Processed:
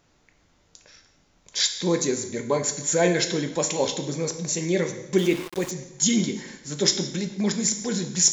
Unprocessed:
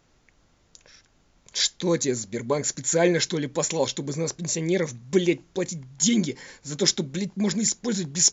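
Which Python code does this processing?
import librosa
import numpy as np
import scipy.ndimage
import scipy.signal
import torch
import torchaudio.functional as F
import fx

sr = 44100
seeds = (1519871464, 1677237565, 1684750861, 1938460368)

y = fx.low_shelf(x, sr, hz=120.0, db=-4.0)
y = fx.echo_feedback(y, sr, ms=171, feedback_pct=43, wet_db=-22)
y = fx.rev_plate(y, sr, seeds[0], rt60_s=0.85, hf_ratio=0.95, predelay_ms=0, drr_db=6.0)
y = fx.sample_gate(y, sr, floor_db=-32.5, at=(5.18, 5.71))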